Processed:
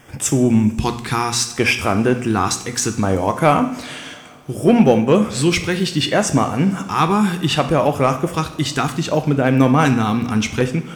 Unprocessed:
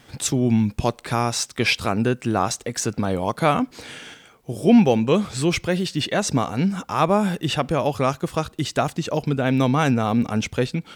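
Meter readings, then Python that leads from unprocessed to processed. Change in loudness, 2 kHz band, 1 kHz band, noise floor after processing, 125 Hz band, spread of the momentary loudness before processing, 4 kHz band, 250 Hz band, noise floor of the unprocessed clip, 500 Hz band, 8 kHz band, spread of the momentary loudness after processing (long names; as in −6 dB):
+4.5 dB, +5.0 dB, +4.5 dB, −35 dBFS, +4.5 dB, 7 LU, +4.5 dB, +4.0 dB, −53 dBFS, +4.5 dB, +5.5 dB, 7 LU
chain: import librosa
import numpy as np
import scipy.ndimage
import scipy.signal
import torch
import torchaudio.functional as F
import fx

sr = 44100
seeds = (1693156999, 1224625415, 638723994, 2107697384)

p1 = fx.filter_lfo_notch(x, sr, shape='square', hz=0.66, low_hz=590.0, high_hz=4100.0, q=1.3)
p2 = fx.hum_notches(p1, sr, base_hz=60, count=4)
p3 = 10.0 ** (-13.5 / 20.0) * (np.abs((p2 / 10.0 ** (-13.5 / 20.0) + 3.0) % 4.0 - 2.0) - 1.0)
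p4 = p2 + (p3 * 10.0 ** (-12.0 / 20.0))
p5 = fx.rev_double_slope(p4, sr, seeds[0], early_s=0.6, late_s=4.2, knee_db=-20, drr_db=7.5)
y = p5 * 10.0 ** (3.5 / 20.0)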